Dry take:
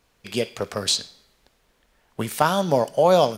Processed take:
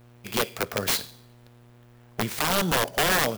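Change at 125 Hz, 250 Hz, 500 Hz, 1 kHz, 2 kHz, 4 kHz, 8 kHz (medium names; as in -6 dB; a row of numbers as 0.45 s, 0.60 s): -3.0 dB, -3.5 dB, -9.0 dB, -5.0 dB, +6.5 dB, -1.0 dB, +1.0 dB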